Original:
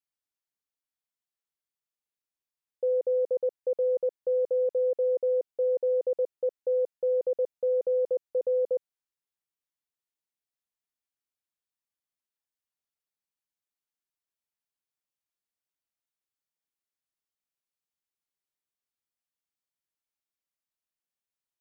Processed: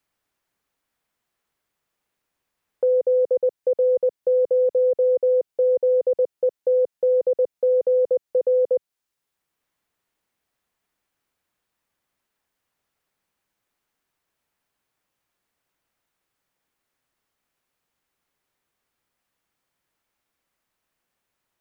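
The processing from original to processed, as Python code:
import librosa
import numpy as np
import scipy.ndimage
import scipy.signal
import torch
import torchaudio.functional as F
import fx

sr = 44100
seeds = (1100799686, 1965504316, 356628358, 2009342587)

y = fx.band_squash(x, sr, depth_pct=40)
y = y * 10.0 ** (7.0 / 20.0)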